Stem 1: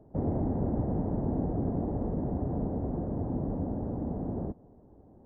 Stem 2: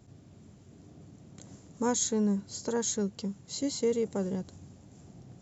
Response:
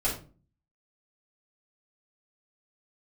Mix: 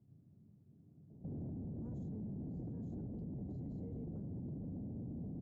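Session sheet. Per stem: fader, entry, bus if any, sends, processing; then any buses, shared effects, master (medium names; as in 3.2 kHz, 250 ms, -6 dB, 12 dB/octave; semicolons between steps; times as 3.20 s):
+2.5 dB, 1.10 s, no send, local Wiener filter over 25 samples
-7.5 dB, 0.00 s, no send, none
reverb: none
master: band-pass filter 150 Hz, Q 1.3; peak limiter -38.5 dBFS, peak gain reduction 18 dB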